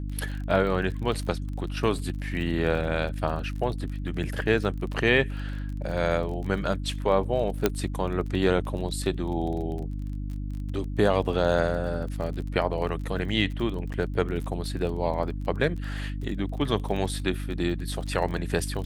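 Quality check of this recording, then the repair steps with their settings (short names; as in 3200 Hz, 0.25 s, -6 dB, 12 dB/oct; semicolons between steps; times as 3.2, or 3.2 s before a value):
crackle 29/s -34 dBFS
hum 50 Hz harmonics 6 -32 dBFS
7.66 pop -7 dBFS
13.93–13.94 gap 8.2 ms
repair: de-click; de-hum 50 Hz, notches 6; interpolate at 13.93, 8.2 ms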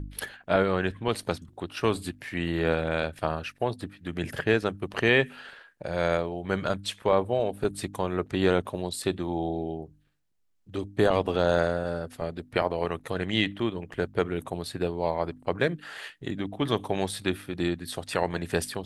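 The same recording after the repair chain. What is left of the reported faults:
none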